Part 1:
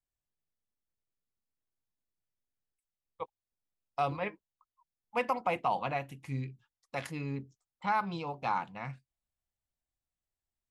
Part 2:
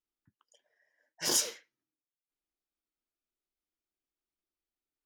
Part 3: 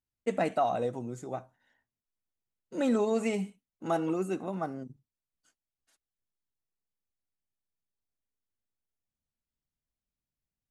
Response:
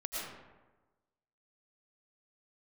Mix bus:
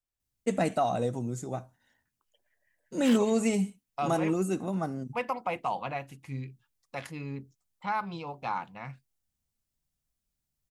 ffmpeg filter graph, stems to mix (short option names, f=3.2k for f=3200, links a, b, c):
-filter_complex "[0:a]volume=-1dB,asplit=2[a][b];[1:a]acrossover=split=960[c][d];[c]aeval=exprs='val(0)*(1-1/2+1/2*cos(2*PI*5*n/s))':c=same[e];[d]aeval=exprs='val(0)*(1-1/2-1/2*cos(2*PI*5*n/s))':c=same[f];[e][f]amix=inputs=2:normalize=0,highshelf=f=3.8k:t=q:w=3:g=-12.5,adelay=1800,volume=1.5dB[g];[2:a]bass=f=250:g=8,treble=f=4k:g=9,adelay=200,volume=0dB[h];[b]apad=whole_len=302110[i];[g][i]sidechaincompress=threshold=-47dB:ratio=3:attack=16:release=609[j];[a][j][h]amix=inputs=3:normalize=0"